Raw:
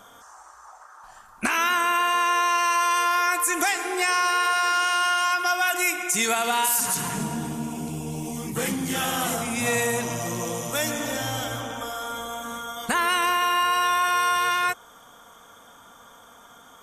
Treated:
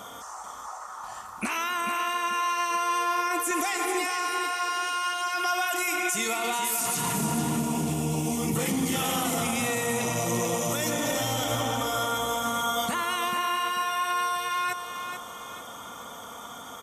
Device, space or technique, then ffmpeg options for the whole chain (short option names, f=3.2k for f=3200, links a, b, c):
stacked limiters: -filter_complex "[0:a]highpass=62,bandreject=f=1.6k:w=6.1,asettb=1/sr,asplit=3[a][b][c];[a]atrim=end=2.714[d];[b]atrim=start=2.71:end=3.51,asetpts=PTS-STARTPTS,afade=t=in:d=0.004:c=qsin,afade=t=out:st=0.796:d=0.004:c=qsin,equalizer=f=240:t=o:w=2.7:g=11.5[e];[c]atrim=start=3.506[f];[d][e]acrossfade=d=0.004:c1=hsin:c2=qsin[g];[g][f]acrossfade=d=0.004:c1=qsin:c2=hsin,alimiter=limit=-15.5dB:level=0:latency=1:release=366,alimiter=limit=-20.5dB:level=0:latency=1:release=26,alimiter=level_in=3dB:limit=-24dB:level=0:latency=1:release=123,volume=-3dB,aecho=1:1:439|878|1317|1756:0.422|0.156|0.0577|0.0214,volume=8dB"